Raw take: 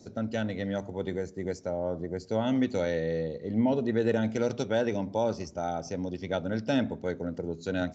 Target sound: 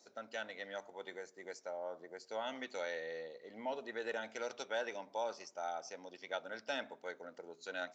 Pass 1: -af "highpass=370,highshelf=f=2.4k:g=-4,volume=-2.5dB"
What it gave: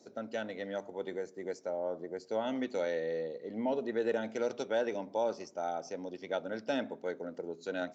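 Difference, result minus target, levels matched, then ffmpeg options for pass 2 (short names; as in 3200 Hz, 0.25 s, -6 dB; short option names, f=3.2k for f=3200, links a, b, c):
1000 Hz band -3.5 dB
-af "highpass=900,highshelf=f=2.4k:g=-4,volume=-2.5dB"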